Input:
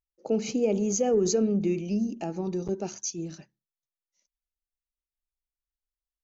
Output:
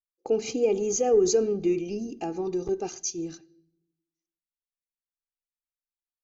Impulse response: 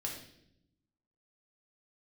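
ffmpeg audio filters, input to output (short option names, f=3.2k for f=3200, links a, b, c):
-filter_complex "[0:a]aecho=1:1:2.5:0.64,agate=range=-21dB:threshold=-42dB:ratio=16:detection=peak,asplit=2[a][b];[1:a]atrim=start_sample=2205[c];[b][c]afir=irnorm=-1:irlink=0,volume=-17.5dB[d];[a][d]amix=inputs=2:normalize=0,volume=-1dB"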